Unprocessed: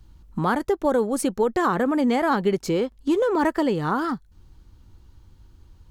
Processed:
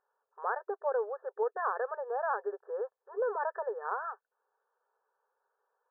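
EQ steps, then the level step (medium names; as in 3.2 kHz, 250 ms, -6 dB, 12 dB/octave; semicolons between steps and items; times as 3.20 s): brick-wall FIR band-pass 400–1800 Hz; -9.0 dB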